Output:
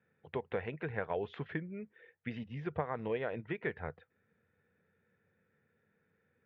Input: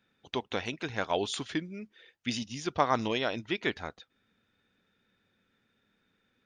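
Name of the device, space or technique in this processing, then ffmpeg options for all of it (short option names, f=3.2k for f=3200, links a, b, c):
bass amplifier: -af "acompressor=threshold=-30dB:ratio=5,highpass=75,equalizer=f=87:t=q:w=4:g=10,equalizer=f=150:t=q:w=4:g=9,equalizer=f=280:t=q:w=4:g=-6,equalizer=f=470:t=q:w=4:g=9,equalizer=f=1.2k:t=q:w=4:g=-3,equalizer=f=1.8k:t=q:w=4:g=4,lowpass=f=2.2k:w=0.5412,lowpass=f=2.2k:w=1.3066,volume=-3.5dB"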